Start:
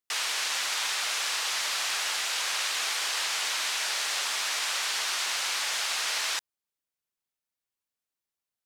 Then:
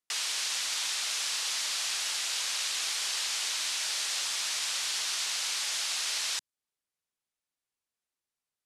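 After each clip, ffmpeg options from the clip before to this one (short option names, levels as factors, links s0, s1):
-filter_complex "[0:a]lowpass=f=12000:w=0.5412,lowpass=f=12000:w=1.3066,acrossover=split=240|3000[s0][s1][s2];[s1]acompressor=threshold=0.00562:ratio=2.5[s3];[s0][s3][s2]amix=inputs=3:normalize=0"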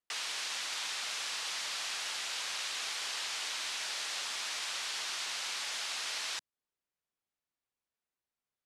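-af "highshelf=f=3800:g=-10.5"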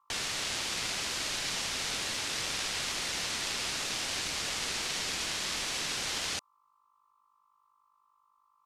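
-af "aeval=exprs='val(0)+0.000251*(sin(2*PI*50*n/s)+sin(2*PI*2*50*n/s)/2+sin(2*PI*3*50*n/s)/3+sin(2*PI*4*50*n/s)/4+sin(2*PI*5*50*n/s)/5)':c=same,aeval=exprs='val(0)*sin(2*PI*1100*n/s)':c=same,volume=2.11"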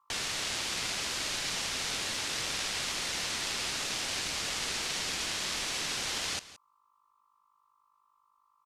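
-af "aecho=1:1:171:0.141"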